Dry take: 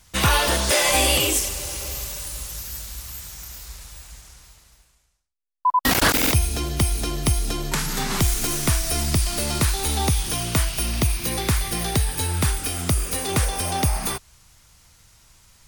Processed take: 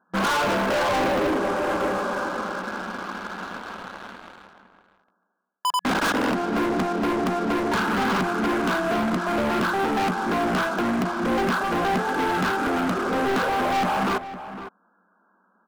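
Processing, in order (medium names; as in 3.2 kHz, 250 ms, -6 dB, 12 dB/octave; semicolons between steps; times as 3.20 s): peaking EQ 510 Hz -4 dB 2.4 oct; FFT band-pass 180–1700 Hz; in parallel at 0 dB: gain riding 0.5 s; on the sum: waveshaping leveller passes 3; saturation -22.5 dBFS, distortion -7 dB; echo from a far wall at 87 m, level -12 dB; trim +1.5 dB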